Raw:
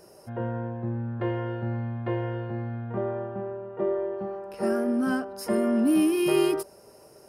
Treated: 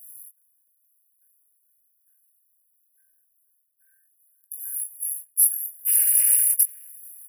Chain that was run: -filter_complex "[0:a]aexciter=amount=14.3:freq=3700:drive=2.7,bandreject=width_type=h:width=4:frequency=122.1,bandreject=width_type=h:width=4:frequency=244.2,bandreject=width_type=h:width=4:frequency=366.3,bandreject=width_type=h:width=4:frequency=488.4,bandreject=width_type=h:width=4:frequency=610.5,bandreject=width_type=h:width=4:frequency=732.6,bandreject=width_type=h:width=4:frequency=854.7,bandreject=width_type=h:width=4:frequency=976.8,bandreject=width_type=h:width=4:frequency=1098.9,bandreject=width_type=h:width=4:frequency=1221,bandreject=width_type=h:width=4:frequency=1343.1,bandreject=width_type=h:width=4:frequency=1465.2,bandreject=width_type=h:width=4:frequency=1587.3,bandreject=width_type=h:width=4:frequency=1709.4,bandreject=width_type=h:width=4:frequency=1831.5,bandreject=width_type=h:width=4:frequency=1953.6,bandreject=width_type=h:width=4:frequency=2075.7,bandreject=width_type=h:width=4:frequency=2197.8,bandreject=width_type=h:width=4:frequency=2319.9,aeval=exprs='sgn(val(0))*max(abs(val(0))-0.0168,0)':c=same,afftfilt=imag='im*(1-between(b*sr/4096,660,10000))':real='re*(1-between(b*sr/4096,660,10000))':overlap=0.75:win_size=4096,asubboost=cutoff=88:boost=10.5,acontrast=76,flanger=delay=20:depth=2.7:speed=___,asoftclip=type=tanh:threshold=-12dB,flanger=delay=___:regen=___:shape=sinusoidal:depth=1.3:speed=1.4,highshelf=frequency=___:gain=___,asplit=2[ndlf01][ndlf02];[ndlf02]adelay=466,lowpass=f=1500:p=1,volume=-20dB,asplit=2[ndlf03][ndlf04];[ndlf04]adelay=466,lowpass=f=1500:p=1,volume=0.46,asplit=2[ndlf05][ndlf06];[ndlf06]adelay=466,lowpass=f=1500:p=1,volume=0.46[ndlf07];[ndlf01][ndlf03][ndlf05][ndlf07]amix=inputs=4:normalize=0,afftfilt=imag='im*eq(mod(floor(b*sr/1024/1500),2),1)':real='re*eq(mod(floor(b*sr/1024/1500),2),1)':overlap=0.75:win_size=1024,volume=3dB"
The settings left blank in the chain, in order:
0.65, 1.6, -74, 6300, 10